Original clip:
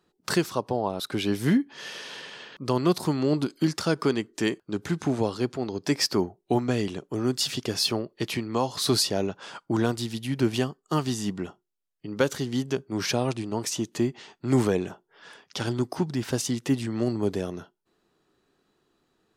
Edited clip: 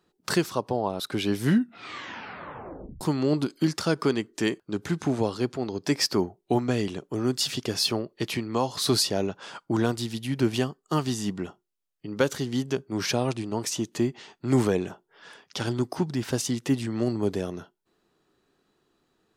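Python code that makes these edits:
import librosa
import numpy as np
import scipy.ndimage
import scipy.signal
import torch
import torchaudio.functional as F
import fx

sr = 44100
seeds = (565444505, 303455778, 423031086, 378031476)

y = fx.edit(x, sr, fx.tape_stop(start_s=1.43, length_s=1.58), tone=tone)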